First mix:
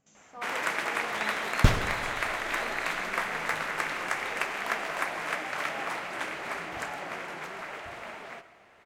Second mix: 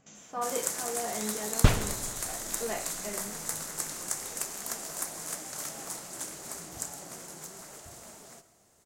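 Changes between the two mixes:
speech +9.5 dB; first sound: add FFT filter 150 Hz 0 dB, 2.4 kHz -18 dB, 7.1 kHz +14 dB

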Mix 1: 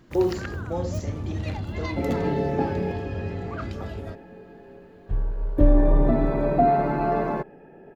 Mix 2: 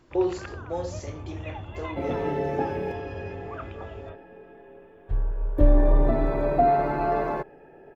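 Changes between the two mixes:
first sound: add rippled Chebyshev low-pass 3.6 kHz, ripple 6 dB; master: add peaking EQ 200 Hz -10 dB 0.84 oct

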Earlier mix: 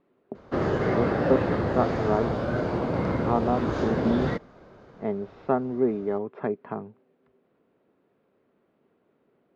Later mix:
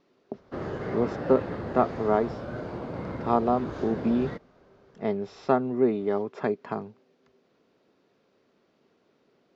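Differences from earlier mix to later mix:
speech: remove distance through air 480 m; background -8.5 dB

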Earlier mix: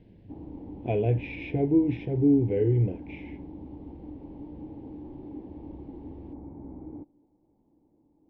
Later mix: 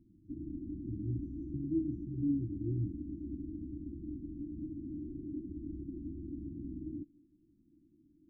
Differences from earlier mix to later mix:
speech -11.5 dB; master: add brick-wall FIR band-stop 370–5600 Hz

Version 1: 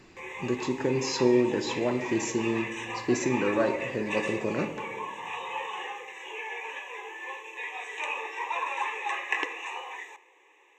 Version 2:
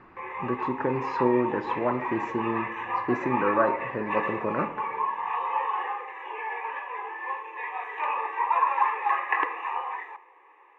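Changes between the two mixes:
speech: send -6.0 dB; master: add FFT filter 400 Hz 0 dB, 620 Hz +3 dB, 1.2 kHz +12 dB, 7.2 kHz -29 dB

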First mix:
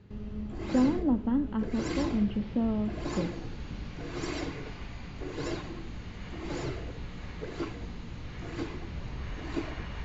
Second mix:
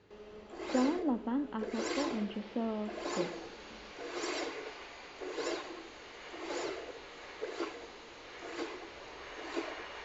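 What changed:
background: add resonant low shelf 270 Hz -11.5 dB, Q 1.5; master: add tone controls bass -14 dB, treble +2 dB

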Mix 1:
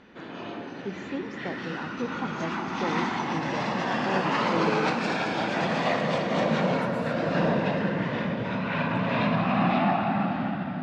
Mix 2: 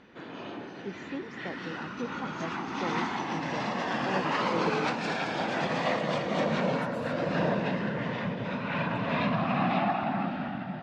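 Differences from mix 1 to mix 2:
speech -3.0 dB; reverb: off

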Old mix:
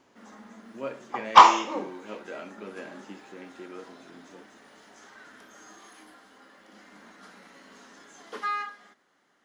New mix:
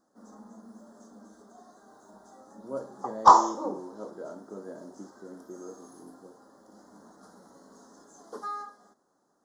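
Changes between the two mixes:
speech: entry +1.90 s; master: add Butterworth band-stop 2.5 kHz, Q 0.54

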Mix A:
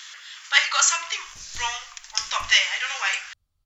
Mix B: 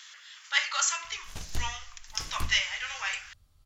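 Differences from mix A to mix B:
speech -8.0 dB; background +11.0 dB

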